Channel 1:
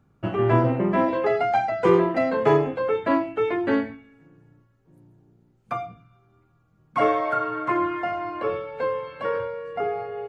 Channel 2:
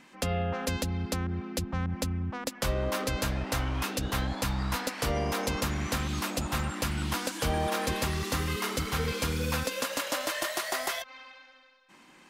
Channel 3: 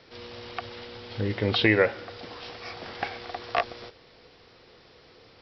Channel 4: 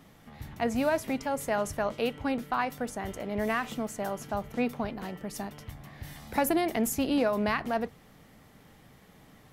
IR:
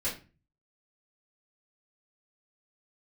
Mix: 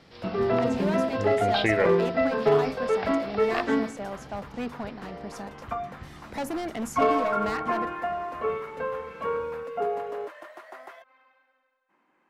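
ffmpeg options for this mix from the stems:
-filter_complex "[0:a]lowpass=3300,aecho=1:1:4.5:0.72,asoftclip=type=hard:threshold=0.376,volume=0.562[s0];[1:a]acrossover=split=280 2000:gain=0.251 1 0.0891[s1][s2][s3];[s1][s2][s3]amix=inputs=3:normalize=0,volume=0.335[s4];[2:a]volume=0.631[s5];[3:a]lowpass=7200,asoftclip=type=hard:threshold=0.0562,volume=0.794[s6];[s0][s4][s5][s6]amix=inputs=4:normalize=0"

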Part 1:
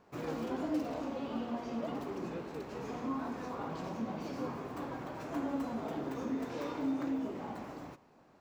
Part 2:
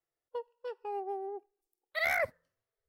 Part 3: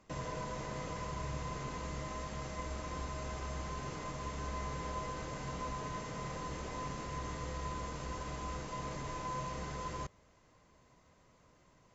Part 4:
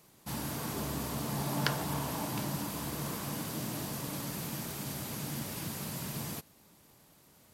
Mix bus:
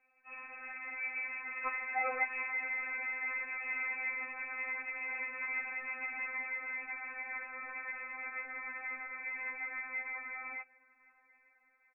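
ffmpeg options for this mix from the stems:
-filter_complex "[0:a]adelay=1900,volume=0.708[s0];[1:a]volume=1.06[s1];[2:a]highpass=260,dynaudnorm=f=250:g=9:m=3.16,adelay=550,volume=0.75[s2];[3:a]aecho=1:1:7.3:0.46,volume=0.75[s3];[s0][s1][s2][s3]amix=inputs=4:normalize=0,lowshelf=f=200:g=-11,lowpass=f=2300:t=q:w=0.5098,lowpass=f=2300:t=q:w=0.6013,lowpass=f=2300:t=q:w=0.9,lowpass=f=2300:t=q:w=2.563,afreqshift=-2700,afftfilt=real='re*3.46*eq(mod(b,12),0)':imag='im*3.46*eq(mod(b,12),0)':win_size=2048:overlap=0.75"

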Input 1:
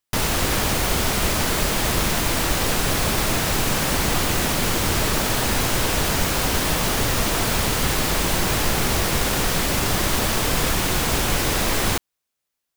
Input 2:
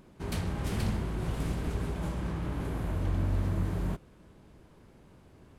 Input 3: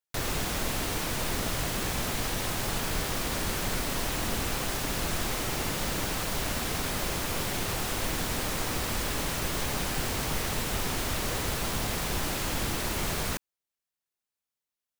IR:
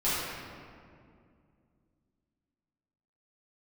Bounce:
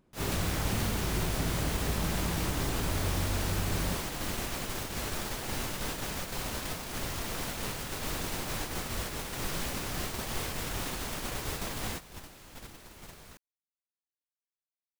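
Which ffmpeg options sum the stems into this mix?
-filter_complex "[0:a]alimiter=limit=0.178:level=0:latency=1:release=270,volume=0.266[s0];[1:a]acompressor=threshold=0.0282:ratio=6,volume=1.26[s1];[2:a]volume=0.447[s2];[s0][s1][s2]amix=inputs=3:normalize=0,agate=range=0.2:threshold=0.02:ratio=16:detection=peak"

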